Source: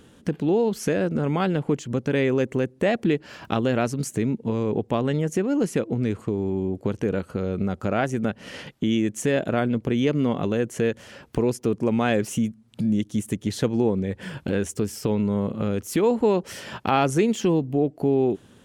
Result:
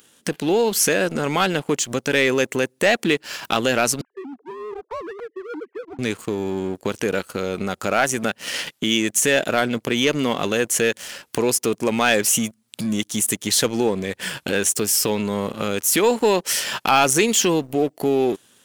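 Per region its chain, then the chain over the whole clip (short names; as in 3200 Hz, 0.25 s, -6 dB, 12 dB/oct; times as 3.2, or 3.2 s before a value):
4.01–5.99 sine-wave speech + ladder low-pass 1400 Hz, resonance 35% + compressor 4:1, threshold -30 dBFS
whole clip: de-esser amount 60%; tilt +4 dB/oct; sample leveller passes 2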